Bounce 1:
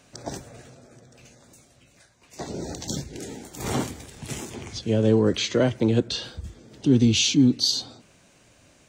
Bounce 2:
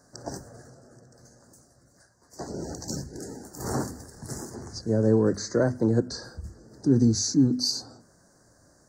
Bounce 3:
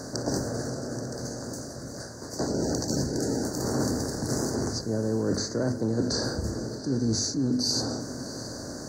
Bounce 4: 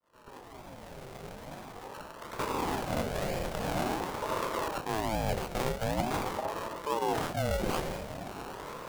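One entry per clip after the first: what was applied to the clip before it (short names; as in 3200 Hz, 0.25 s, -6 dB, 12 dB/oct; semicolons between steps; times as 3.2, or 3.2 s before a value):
elliptic band-stop 1700–4700 Hz, stop band 50 dB; notches 50/100/150/200/250 Hz; gain -1.5 dB
per-bin compression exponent 0.6; reverse; compressor 6:1, threshold -27 dBFS, peak gain reduction 13 dB; reverse; diffused feedback echo 0.705 s, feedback 45%, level -14.5 dB; gain +3 dB
opening faded in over 2.24 s; decimation with a swept rate 25×, swing 60% 1.1 Hz; ring modulator with a swept carrier 520 Hz, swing 50%, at 0.45 Hz; gain -1.5 dB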